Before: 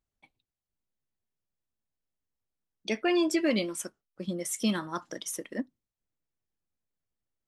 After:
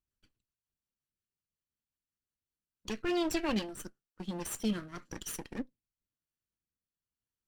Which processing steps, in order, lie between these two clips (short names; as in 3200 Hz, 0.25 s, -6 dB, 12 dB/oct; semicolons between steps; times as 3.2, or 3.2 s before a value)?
minimum comb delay 0.69 ms; rotary speaker horn 5.5 Hz, later 1 Hz, at 2.26; gain -2 dB